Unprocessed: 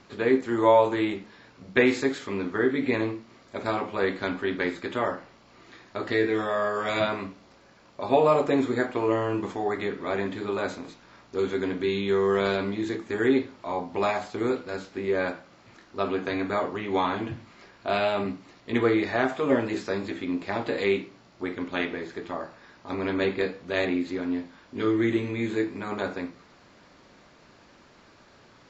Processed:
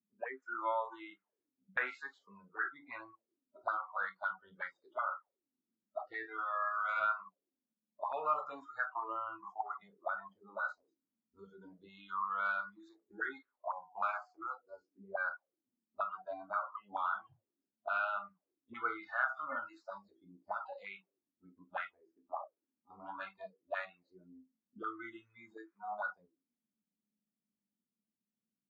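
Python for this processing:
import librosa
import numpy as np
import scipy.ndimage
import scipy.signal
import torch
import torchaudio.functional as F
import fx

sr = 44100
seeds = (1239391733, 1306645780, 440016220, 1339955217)

y = fx.noise_reduce_blind(x, sr, reduce_db=29)
y = fx.auto_wah(y, sr, base_hz=210.0, top_hz=1400.0, q=7.8, full_db=-28.5, direction='up')
y = y * 10.0 ** (3.5 / 20.0)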